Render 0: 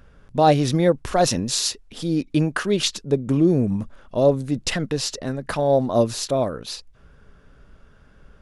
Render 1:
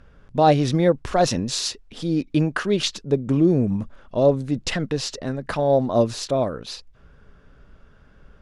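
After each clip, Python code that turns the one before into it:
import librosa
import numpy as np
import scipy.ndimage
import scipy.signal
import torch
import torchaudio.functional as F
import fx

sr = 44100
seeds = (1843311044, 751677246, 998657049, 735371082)

y = fx.air_absorb(x, sr, metres=52.0)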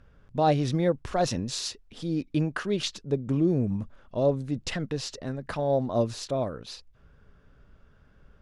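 y = fx.peak_eq(x, sr, hz=98.0, db=3.5, octaves=1.2)
y = y * librosa.db_to_amplitude(-7.0)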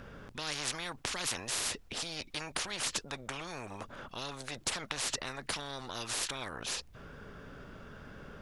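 y = fx.spectral_comp(x, sr, ratio=10.0)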